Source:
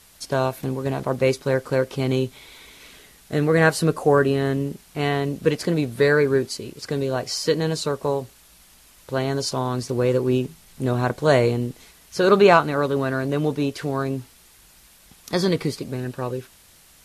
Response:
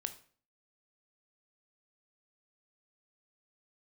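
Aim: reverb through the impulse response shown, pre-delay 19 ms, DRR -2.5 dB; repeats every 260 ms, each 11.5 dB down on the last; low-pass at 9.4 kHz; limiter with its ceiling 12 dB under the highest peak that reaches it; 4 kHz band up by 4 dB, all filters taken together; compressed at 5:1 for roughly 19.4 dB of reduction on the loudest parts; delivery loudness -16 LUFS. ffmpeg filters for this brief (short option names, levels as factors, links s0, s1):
-filter_complex "[0:a]lowpass=9400,equalizer=f=4000:t=o:g=5,acompressor=threshold=0.0251:ratio=5,alimiter=level_in=1.78:limit=0.0631:level=0:latency=1,volume=0.562,aecho=1:1:260|520|780:0.266|0.0718|0.0194,asplit=2[s0][s1];[1:a]atrim=start_sample=2205,adelay=19[s2];[s1][s2]afir=irnorm=-1:irlink=0,volume=1.5[s3];[s0][s3]amix=inputs=2:normalize=0,volume=8.91"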